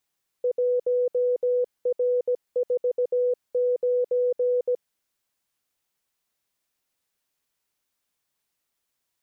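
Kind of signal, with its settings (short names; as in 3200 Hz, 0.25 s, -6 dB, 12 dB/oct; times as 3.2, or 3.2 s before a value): Morse "1R49" 17 wpm 494 Hz -19.5 dBFS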